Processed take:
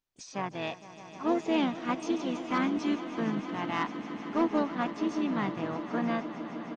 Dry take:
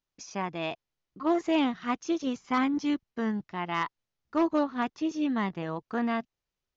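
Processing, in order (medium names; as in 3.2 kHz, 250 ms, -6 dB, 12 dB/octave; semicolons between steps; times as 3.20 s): harmony voices -7 st -18 dB, -5 st -10 dB, +5 st -15 dB; echo with a slow build-up 154 ms, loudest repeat 5, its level -16 dB; trim -2.5 dB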